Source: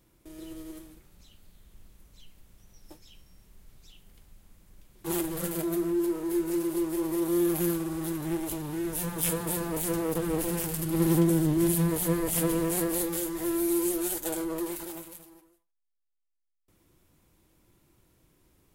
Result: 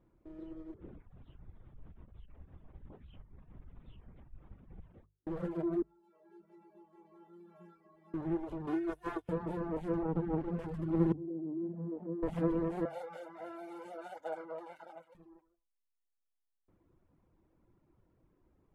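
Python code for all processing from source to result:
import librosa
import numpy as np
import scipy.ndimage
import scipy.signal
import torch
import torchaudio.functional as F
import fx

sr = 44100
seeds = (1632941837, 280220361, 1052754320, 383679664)

y = fx.chain(x, sr, fx.over_compress(threshold_db=-48.0, ratio=-0.5),
    fx.lpc_vocoder(seeds[0], excitation='whisper', order=10), at=(0.74, 5.27))
y = fx.chain(y, sr, fx.highpass(hz=110.0, slope=12),
    fx.stiff_resonator(f0_hz=200.0, decay_s=0.52, stiffness=0.008), at=(5.82, 8.14))
y = fx.chain(y, sr, fx.tilt_eq(slope=2.5),
    fx.comb(ms=2.8, depth=0.91),
    fx.over_compress(threshold_db=-32.0, ratio=-1.0), at=(8.67, 9.29))
y = fx.chain(y, sr, fx.air_absorb(metres=75.0),
    fx.running_max(window=33), at=(10.03, 10.59))
y = fx.chain(y, sr, fx.ladder_bandpass(hz=310.0, resonance_pct=35),
    fx.env_flatten(amount_pct=50), at=(11.12, 12.23))
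y = fx.chain(y, sr, fx.highpass(hz=430.0, slope=12),
    fx.comb(ms=1.4, depth=0.8), at=(12.85, 15.15))
y = fx.dereverb_blind(y, sr, rt60_s=0.7)
y = scipy.signal.sosfilt(scipy.signal.butter(2, 1200.0, 'lowpass', fs=sr, output='sos'), y)
y = fx.hum_notches(y, sr, base_hz=50, count=3)
y = F.gain(torch.from_numpy(y), -2.5).numpy()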